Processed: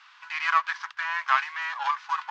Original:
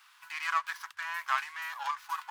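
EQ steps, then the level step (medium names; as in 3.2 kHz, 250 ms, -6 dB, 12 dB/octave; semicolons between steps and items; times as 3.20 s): high-pass 390 Hz 6 dB/octave; steep low-pass 7.2 kHz 36 dB/octave; distance through air 120 m; +8.5 dB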